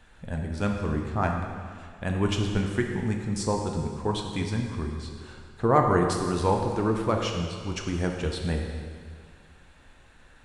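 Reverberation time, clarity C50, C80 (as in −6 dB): 2.0 s, 3.5 dB, 4.5 dB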